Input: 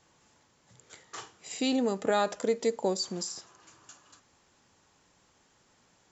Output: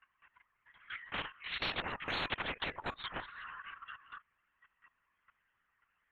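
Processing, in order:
spectral dynamics exaggerated over time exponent 2
Chebyshev band-pass filter 990–2,700 Hz, order 3
output level in coarse steps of 15 dB
linear-prediction vocoder at 8 kHz whisper
every bin compressed towards the loudest bin 10 to 1
level +12.5 dB

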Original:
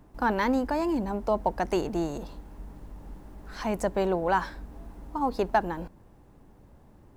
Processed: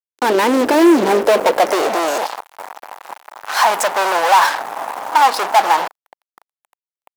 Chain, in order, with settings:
fade in at the beginning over 1.08 s
0:01.99–0:03.70: low-shelf EQ 130 Hz −10.5 dB
fuzz pedal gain 44 dB, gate −45 dBFS
high-pass filter sweep 360 Hz → 830 Hz, 0:00.99–0:02.36

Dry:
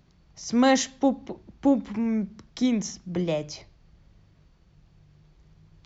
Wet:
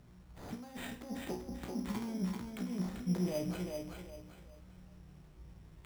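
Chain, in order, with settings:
compressor whose output falls as the input rises −29 dBFS, ratio −0.5
brickwall limiter −23 dBFS, peak gain reduction 8 dB
high-frequency loss of the air 190 metres
tuned comb filter 61 Hz, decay 0.35 s, harmonics all, mix 90%
on a send: feedback echo with a high-pass in the loop 389 ms, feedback 33%, high-pass 170 Hz, level −4 dB
on the sum: bad sample-rate conversion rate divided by 8×, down none, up hold
level +3 dB

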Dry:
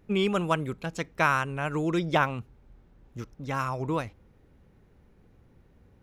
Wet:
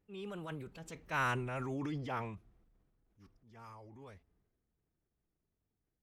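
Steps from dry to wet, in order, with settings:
source passing by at 0:01.38, 29 m/s, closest 11 metres
transient designer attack −7 dB, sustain +7 dB
phase-vocoder pitch shift with formants kept −1.5 semitones
level −7.5 dB

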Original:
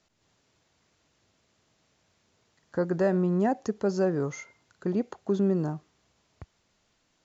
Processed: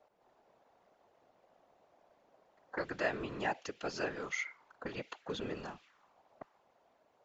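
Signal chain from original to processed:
envelope filter 660–2,800 Hz, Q 2.3, up, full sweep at −30.5 dBFS
random phases in short frames
level +10.5 dB

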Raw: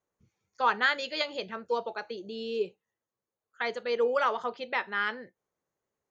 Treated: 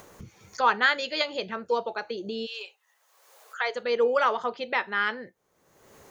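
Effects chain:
0:02.45–0:03.74: high-pass filter 1,000 Hz → 430 Hz 24 dB per octave
upward compression, threshold −31 dBFS
level +3.5 dB

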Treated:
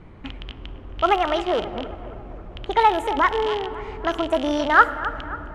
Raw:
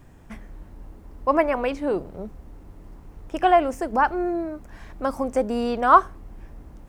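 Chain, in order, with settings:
loose part that buzzes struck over −35 dBFS, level −22 dBFS
in parallel at −2.5 dB: downward compressor 4 to 1, threshold −35 dBFS, peak gain reduction 22 dB
on the sum: speed change +24%
bucket-brigade delay 269 ms, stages 4,096, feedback 54%, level −14.5 dB
on a send at −14 dB: convolution reverb RT60 3.3 s, pre-delay 3 ms
on the sum: low-pass that shuts in the quiet parts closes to 2,800 Hz, open at −13.5 dBFS

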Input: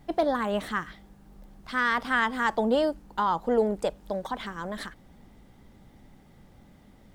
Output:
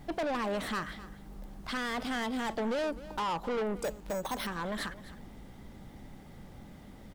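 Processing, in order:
0:01.77–0:02.79: flat-topped bell 1,300 Hz −9 dB 1.2 octaves
in parallel at −3 dB: downward compressor, threshold −36 dBFS, peak gain reduction 16.5 dB
on the sum: soft clipping −29.5 dBFS, distortion −6 dB
single-tap delay 257 ms −16.5 dB
0:03.84–0:04.47: bad sample-rate conversion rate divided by 6×, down none, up hold

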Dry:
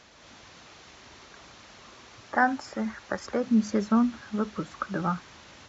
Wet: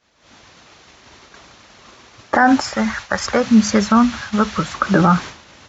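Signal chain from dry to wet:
downward expander −40 dBFS
0:02.61–0:04.75: parametric band 330 Hz −12 dB 1.6 octaves
boost into a limiter +19.5 dB
level −1 dB

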